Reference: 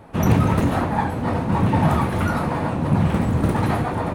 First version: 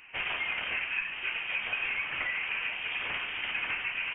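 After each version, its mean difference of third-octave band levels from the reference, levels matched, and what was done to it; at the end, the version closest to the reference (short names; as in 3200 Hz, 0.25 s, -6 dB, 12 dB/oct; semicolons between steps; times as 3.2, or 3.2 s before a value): 16.0 dB: HPF 900 Hz 12 dB/oct; compressor, threshold -29 dBFS, peak gain reduction 8.5 dB; inverted band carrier 3400 Hz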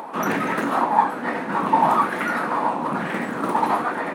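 4.5 dB: upward compressor, threshold -28 dBFS; HPF 230 Hz 24 dB/oct; LFO bell 1.1 Hz 920–1900 Hz +12 dB; gain -2.5 dB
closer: second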